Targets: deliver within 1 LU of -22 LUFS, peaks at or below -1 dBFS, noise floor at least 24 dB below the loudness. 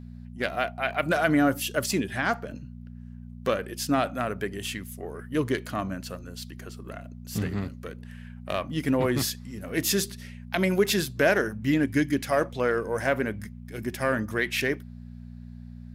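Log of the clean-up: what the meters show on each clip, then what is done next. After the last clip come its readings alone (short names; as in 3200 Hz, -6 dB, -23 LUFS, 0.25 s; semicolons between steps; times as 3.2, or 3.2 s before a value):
hum 60 Hz; harmonics up to 240 Hz; hum level -39 dBFS; loudness -27.0 LUFS; peak -8.5 dBFS; loudness target -22.0 LUFS
-> de-hum 60 Hz, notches 4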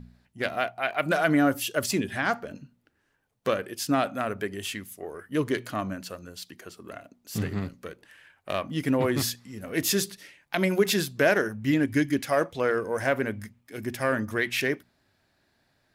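hum none; loudness -27.5 LUFS; peak -8.5 dBFS; loudness target -22.0 LUFS
-> gain +5.5 dB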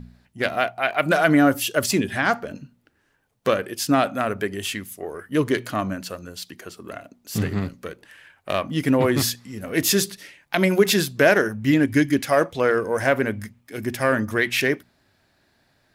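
loudness -22.0 LUFS; peak -3.0 dBFS; noise floor -66 dBFS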